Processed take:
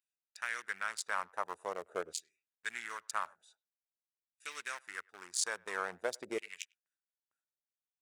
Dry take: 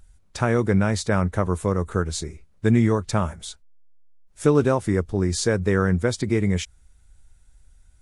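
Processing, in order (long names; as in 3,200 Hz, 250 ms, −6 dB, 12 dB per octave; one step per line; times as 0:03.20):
adaptive Wiener filter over 41 samples
first-order pre-emphasis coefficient 0.8
noise gate with hold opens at −56 dBFS
auto-filter high-pass saw down 0.47 Hz 520–2,600 Hz
far-end echo of a speakerphone 100 ms, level −28 dB
level +1 dB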